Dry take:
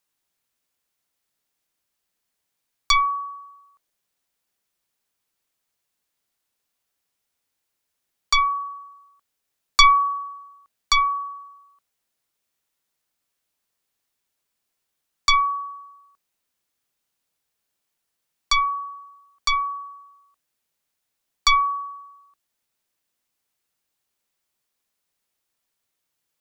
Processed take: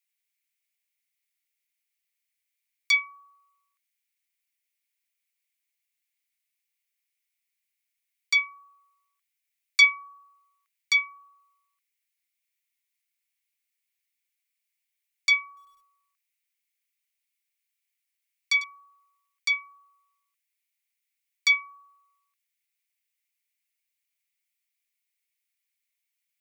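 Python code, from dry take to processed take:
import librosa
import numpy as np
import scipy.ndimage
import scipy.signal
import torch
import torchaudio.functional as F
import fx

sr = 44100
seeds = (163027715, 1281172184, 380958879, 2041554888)

y = fx.ladder_highpass(x, sr, hz=2000.0, resonance_pct=70)
y = fx.high_shelf(y, sr, hz=6900.0, db=9.5)
y = fx.echo_crushed(y, sr, ms=99, feedback_pct=80, bits=9, wet_db=-14.0, at=(15.47, 18.64))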